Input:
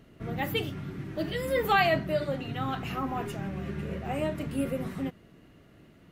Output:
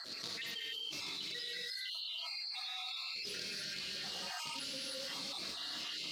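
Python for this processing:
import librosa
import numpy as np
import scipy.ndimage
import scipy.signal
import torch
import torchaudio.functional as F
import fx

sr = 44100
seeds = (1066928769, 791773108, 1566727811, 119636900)

y = fx.spec_dropout(x, sr, seeds[0], share_pct=83)
y = fx.quant_float(y, sr, bits=2)
y = fx.bandpass_q(y, sr, hz=4400.0, q=4.7)
y = fx.rev_gated(y, sr, seeds[1], gate_ms=330, shape='rising', drr_db=-7.5)
y = fx.env_flatten(y, sr, amount_pct=100)
y = y * librosa.db_to_amplitude(-3.0)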